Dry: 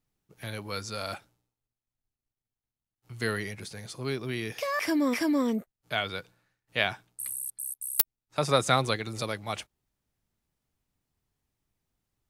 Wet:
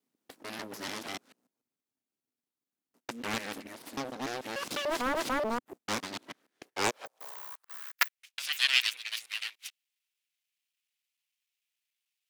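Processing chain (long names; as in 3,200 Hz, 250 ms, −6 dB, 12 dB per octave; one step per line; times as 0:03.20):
reversed piece by piece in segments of 147 ms
full-wave rectification
high-pass filter sweep 260 Hz → 2,600 Hz, 0:06.41–0:08.30
highs frequency-modulated by the lows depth 0.87 ms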